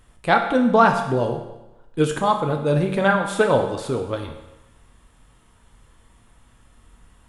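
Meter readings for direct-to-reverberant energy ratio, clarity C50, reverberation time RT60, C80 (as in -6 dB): 3.5 dB, 7.5 dB, 0.95 s, 9.0 dB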